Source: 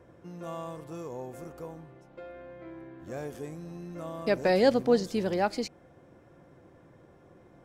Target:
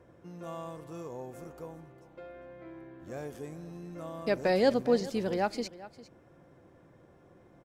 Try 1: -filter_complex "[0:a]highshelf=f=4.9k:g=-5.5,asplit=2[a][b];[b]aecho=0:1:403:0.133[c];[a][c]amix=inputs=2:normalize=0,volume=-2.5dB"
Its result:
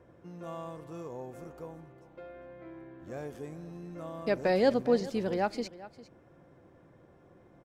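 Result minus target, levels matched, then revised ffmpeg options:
8000 Hz band -3.5 dB
-filter_complex "[0:a]asplit=2[a][b];[b]aecho=0:1:403:0.133[c];[a][c]amix=inputs=2:normalize=0,volume=-2.5dB"

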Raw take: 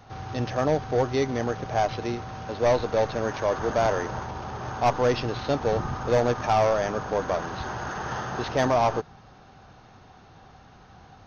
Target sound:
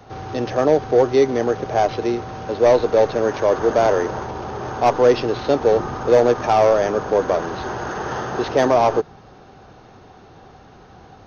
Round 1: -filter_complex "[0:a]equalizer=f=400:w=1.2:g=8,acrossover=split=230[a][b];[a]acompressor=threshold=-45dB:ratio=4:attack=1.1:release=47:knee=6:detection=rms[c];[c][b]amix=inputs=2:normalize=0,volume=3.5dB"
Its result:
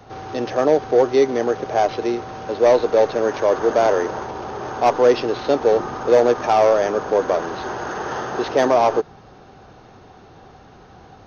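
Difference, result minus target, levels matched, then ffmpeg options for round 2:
compressor: peak gain reduction +8.5 dB
-filter_complex "[0:a]equalizer=f=400:w=1.2:g=8,acrossover=split=230[a][b];[a]acompressor=threshold=-33.5dB:ratio=4:attack=1.1:release=47:knee=6:detection=rms[c];[c][b]amix=inputs=2:normalize=0,volume=3.5dB"

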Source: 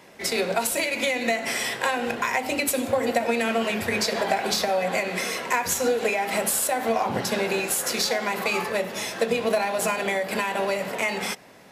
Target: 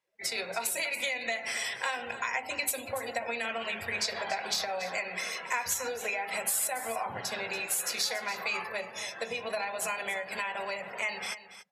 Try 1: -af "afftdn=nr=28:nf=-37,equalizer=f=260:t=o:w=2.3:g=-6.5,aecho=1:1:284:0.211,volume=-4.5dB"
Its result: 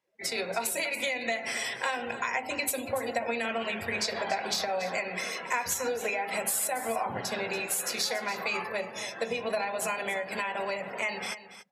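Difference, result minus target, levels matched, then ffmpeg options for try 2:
250 Hz band +6.5 dB
-af "afftdn=nr=28:nf=-37,equalizer=f=260:t=o:w=2.3:g=-15,aecho=1:1:284:0.211,volume=-4.5dB"

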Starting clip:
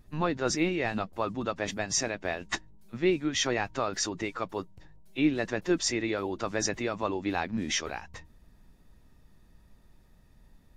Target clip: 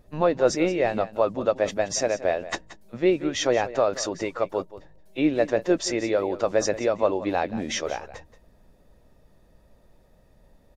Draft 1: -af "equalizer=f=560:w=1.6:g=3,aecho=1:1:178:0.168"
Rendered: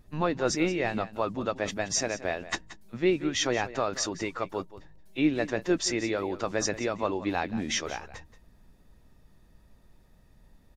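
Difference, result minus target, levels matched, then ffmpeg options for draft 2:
500 Hz band -3.0 dB
-af "equalizer=f=560:w=1.6:g=13.5,aecho=1:1:178:0.168"

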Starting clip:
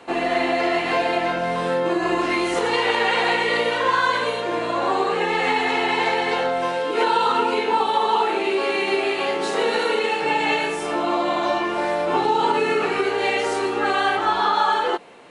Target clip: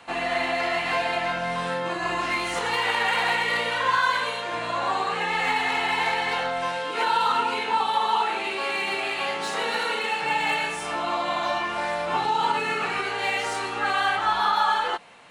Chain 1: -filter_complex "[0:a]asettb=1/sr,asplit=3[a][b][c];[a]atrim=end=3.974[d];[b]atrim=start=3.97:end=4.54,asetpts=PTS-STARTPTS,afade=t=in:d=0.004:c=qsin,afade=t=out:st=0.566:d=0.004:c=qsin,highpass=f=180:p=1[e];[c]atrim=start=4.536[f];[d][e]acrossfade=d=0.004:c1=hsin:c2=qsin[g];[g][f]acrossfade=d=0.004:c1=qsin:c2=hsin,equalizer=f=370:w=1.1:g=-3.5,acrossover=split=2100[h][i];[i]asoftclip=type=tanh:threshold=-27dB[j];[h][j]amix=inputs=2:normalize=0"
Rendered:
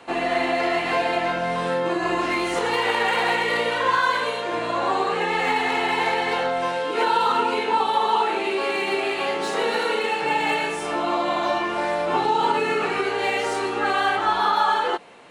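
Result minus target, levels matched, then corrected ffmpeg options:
500 Hz band +4.5 dB
-filter_complex "[0:a]asettb=1/sr,asplit=3[a][b][c];[a]atrim=end=3.974[d];[b]atrim=start=3.97:end=4.54,asetpts=PTS-STARTPTS,afade=t=in:d=0.004:c=qsin,afade=t=out:st=0.566:d=0.004:c=qsin,highpass=f=180:p=1[e];[c]atrim=start=4.536[f];[d][e]acrossfade=d=0.004:c1=hsin:c2=qsin[g];[g][f]acrossfade=d=0.004:c1=qsin:c2=hsin,equalizer=f=370:w=1.1:g=-14,acrossover=split=2100[h][i];[i]asoftclip=type=tanh:threshold=-27dB[j];[h][j]amix=inputs=2:normalize=0"

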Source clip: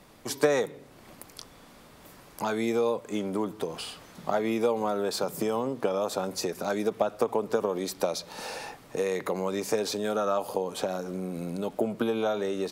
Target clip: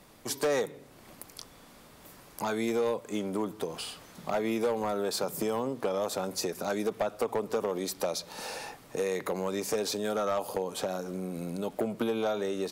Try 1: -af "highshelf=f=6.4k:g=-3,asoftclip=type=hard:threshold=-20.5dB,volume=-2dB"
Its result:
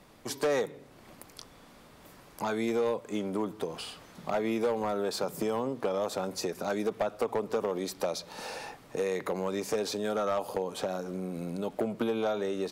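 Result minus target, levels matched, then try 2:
8000 Hz band -4.0 dB
-af "highshelf=f=6.4k:g=4.5,asoftclip=type=hard:threshold=-20.5dB,volume=-2dB"

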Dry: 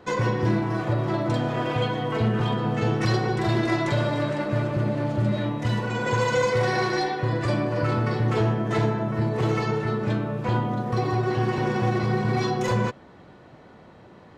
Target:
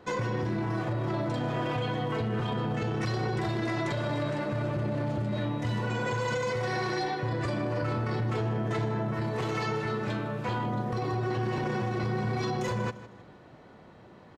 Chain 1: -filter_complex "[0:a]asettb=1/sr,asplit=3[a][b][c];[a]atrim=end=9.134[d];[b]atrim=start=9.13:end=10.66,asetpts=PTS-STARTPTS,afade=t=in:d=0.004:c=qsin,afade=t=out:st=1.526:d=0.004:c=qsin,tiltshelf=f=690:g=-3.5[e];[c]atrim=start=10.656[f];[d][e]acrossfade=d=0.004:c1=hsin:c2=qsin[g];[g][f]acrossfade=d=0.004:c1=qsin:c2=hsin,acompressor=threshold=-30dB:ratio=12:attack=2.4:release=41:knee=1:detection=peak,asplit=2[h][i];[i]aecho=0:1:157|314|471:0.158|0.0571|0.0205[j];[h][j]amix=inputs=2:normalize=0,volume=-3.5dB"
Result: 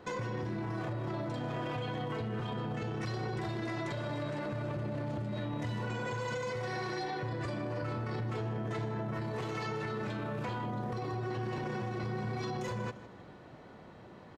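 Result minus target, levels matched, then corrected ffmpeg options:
compressor: peak gain reduction +6.5 dB
-filter_complex "[0:a]asettb=1/sr,asplit=3[a][b][c];[a]atrim=end=9.134[d];[b]atrim=start=9.13:end=10.66,asetpts=PTS-STARTPTS,afade=t=in:d=0.004:c=qsin,afade=t=out:st=1.526:d=0.004:c=qsin,tiltshelf=f=690:g=-3.5[e];[c]atrim=start=10.656[f];[d][e]acrossfade=d=0.004:c1=hsin:c2=qsin[g];[g][f]acrossfade=d=0.004:c1=qsin:c2=hsin,acompressor=threshold=-23dB:ratio=12:attack=2.4:release=41:knee=1:detection=peak,asplit=2[h][i];[i]aecho=0:1:157|314|471:0.158|0.0571|0.0205[j];[h][j]amix=inputs=2:normalize=0,volume=-3.5dB"

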